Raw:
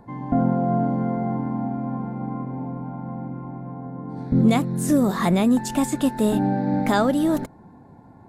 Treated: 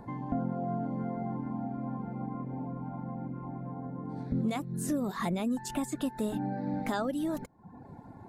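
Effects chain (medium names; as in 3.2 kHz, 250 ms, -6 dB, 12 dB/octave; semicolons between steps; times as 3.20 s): reverb removal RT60 0.62 s; compression 2:1, threshold -40 dBFS, peak gain reduction 14.5 dB; trim +1 dB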